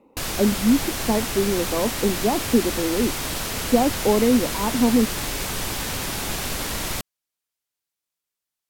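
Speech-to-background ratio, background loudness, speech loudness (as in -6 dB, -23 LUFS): 4.0 dB, -26.5 LUFS, -22.5 LUFS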